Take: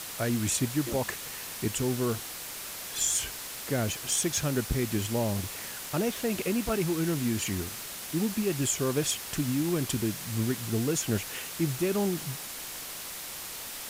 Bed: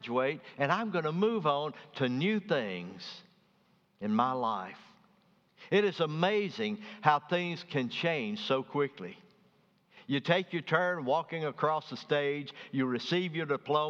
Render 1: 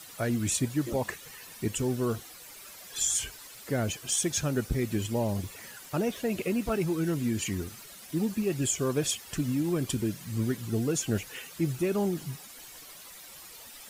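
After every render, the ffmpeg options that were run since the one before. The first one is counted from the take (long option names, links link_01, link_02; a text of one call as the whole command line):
ffmpeg -i in.wav -af "afftdn=noise_reduction=12:noise_floor=-40" out.wav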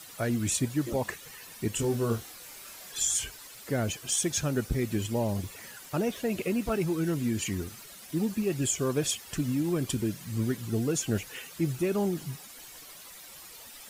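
ffmpeg -i in.wav -filter_complex "[0:a]asettb=1/sr,asplit=3[link_01][link_02][link_03];[link_01]atrim=end=1.724[link_04];[link_02]atrim=start=1.72:end=2.92,asetpts=PTS-STARTPTS,afade=type=in:duration=0.004:curve=qsin,afade=type=out:start_time=1.196:duration=0.004:curve=qsin,asplit=2[link_05][link_06];[link_06]adelay=26,volume=-4.5dB[link_07];[link_05][link_07]amix=inputs=2:normalize=0,atrim=end_sample=52920[link_08];[link_03]atrim=start=2.916[link_09];[link_04][link_08]acrossfade=duration=0.004:curve1=hsin:curve2=qsin[link_10];[link_10][link_09]acrossfade=duration=0.004:curve1=qsin:curve2=hsin" out.wav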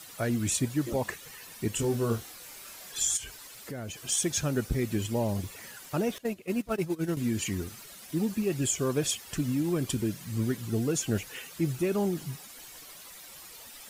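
ffmpeg -i in.wav -filter_complex "[0:a]asplit=3[link_01][link_02][link_03];[link_01]afade=type=out:start_time=3.16:duration=0.02[link_04];[link_02]acompressor=threshold=-37dB:ratio=3:attack=3.2:release=140:knee=1:detection=peak,afade=type=in:start_time=3.16:duration=0.02,afade=type=out:start_time=4:duration=0.02[link_05];[link_03]afade=type=in:start_time=4:duration=0.02[link_06];[link_04][link_05][link_06]amix=inputs=3:normalize=0,asettb=1/sr,asplit=3[link_07][link_08][link_09];[link_07]atrim=end=6.184[link_10];[link_08]atrim=start=6.18:end=7.17,asetpts=PTS-STARTPTS,afade=type=in:duration=0.004:curve=qsin,afade=type=out:start_time=0.986:duration=0.004:curve=qsin,agate=range=-17dB:threshold=-29dB:ratio=16:release=100:detection=peak[link_11];[link_09]atrim=start=7.166[link_12];[link_10][link_11]acrossfade=duration=0.004:curve1=hsin:curve2=qsin[link_13];[link_13][link_12]acrossfade=duration=0.004:curve1=qsin:curve2=hsin" out.wav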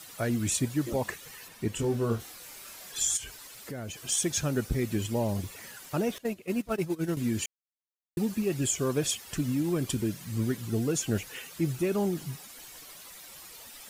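ffmpeg -i in.wav -filter_complex "[0:a]asettb=1/sr,asplit=3[link_01][link_02][link_03];[link_01]atrim=end=1.484[link_04];[link_02]atrim=start=1.48:end=2.2,asetpts=PTS-STARTPTS,afade=type=in:duration=0.004:curve=qsin,afade=type=out:start_time=0.716:duration=0.004:curve=qsin,highshelf=frequency=4400:gain=-7.5[link_05];[link_03]atrim=start=2.196[link_06];[link_04][link_05]acrossfade=duration=0.004:curve1=hsin:curve2=qsin[link_07];[link_07][link_06]acrossfade=duration=0.004:curve1=qsin:curve2=hsin,asplit=3[link_08][link_09][link_10];[link_08]atrim=end=7.46,asetpts=PTS-STARTPTS,afade=type=out:start_time=7.456:duration=0.004:curve=hsin[link_11];[link_09]atrim=start=7.46:end=8.17,asetpts=PTS-STARTPTS,volume=0[link_12];[link_10]atrim=start=8.17,asetpts=PTS-STARTPTS,afade=type=in:duration=0.004:curve=hsin[link_13];[link_11][link_12][link_13]concat=n=3:v=0:a=1" out.wav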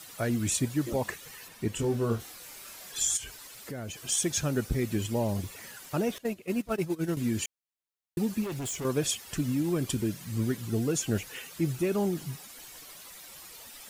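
ffmpeg -i in.wav -filter_complex "[0:a]asettb=1/sr,asplit=3[link_01][link_02][link_03];[link_01]atrim=end=8.444[link_04];[link_02]atrim=start=8.44:end=8.85,asetpts=PTS-STARTPTS,afade=type=in:duration=0.004:curve=qsin,afade=type=out:start_time=0.406:duration=0.004:curve=qsin,volume=32.5dB,asoftclip=hard,volume=-32.5dB[link_05];[link_03]atrim=start=8.846[link_06];[link_04][link_05]acrossfade=duration=0.004:curve1=hsin:curve2=qsin[link_07];[link_07][link_06]acrossfade=duration=0.004:curve1=qsin:curve2=hsin" out.wav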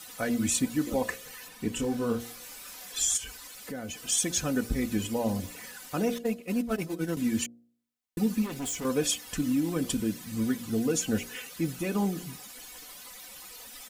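ffmpeg -i in.wav -af "aecho=1:1:4:0.63,bandreject=frequency=58.92:width_type=h:width=4,bandreject=frequency=117.84:width_type=h:width=4,bandreject=frequency=176.76:width_type=h:width=4,bandreject=frequency=235.68:width_type=h:width=4,bandreject=frequency=294.6:width_type=h:width=4,bandreject=frequency=353.52:width_type=h:width=4,bandreject=frequency=412.44:width_type=h:width=4,bandreject=frequency=471.36:width_type=h:width=4,bandreject=frequency=530.28:width_type=h:width=4,bandreject=frequency=589.2:width_type=h:width=4,bandreject=frequency=648.12:width_type=h:width=4,bandreject=frequency=707.04:width_type=h:width=4" out.wav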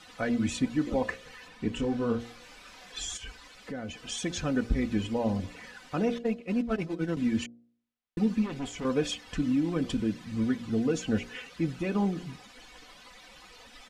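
ffmpeg -i in.wav -af "lowpass=3800,lowshelf=frequency=68:gain=6" out.wav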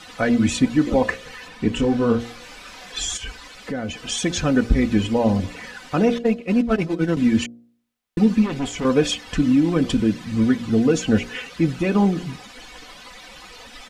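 ffmpeg -i in.wav -af "volume=10dB" out.wav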